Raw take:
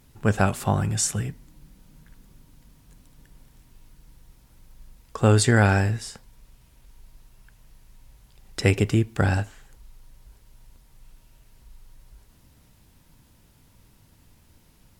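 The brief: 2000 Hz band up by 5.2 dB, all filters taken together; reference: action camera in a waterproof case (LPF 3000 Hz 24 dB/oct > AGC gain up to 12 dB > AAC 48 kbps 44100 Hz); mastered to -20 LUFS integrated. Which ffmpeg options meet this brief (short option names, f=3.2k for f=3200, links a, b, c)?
-af "lowpass=f=3k:w=0.5412,lowpass=f=3k:w=1.3066,equalizer=f=2k:t=o:g=7.5,dynaudnorm=m=12dB,volume=2dB" -ar 44100 -c:a aac -b:a 48k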